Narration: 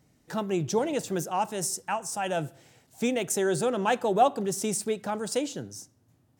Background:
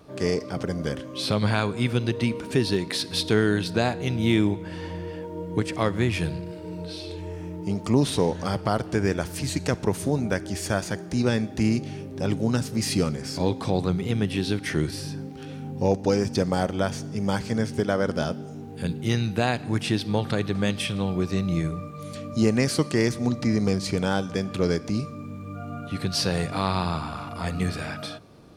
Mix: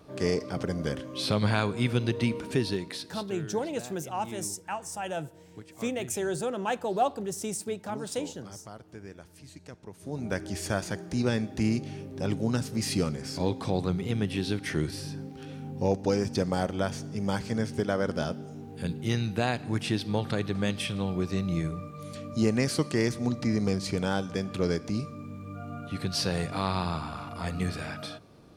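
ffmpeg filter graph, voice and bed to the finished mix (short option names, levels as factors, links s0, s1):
-filter_complex "[0:a]adelay=2800,volume=0.596[s0];[1:a]volume=5.31,afade=t=out:st=2.38:d=0.89:silence=0.11885,afade=t=in:st=9.99:d=0.41:silence=0.141254[s1];[s0][s1]amix=inputs=2:normalize=0"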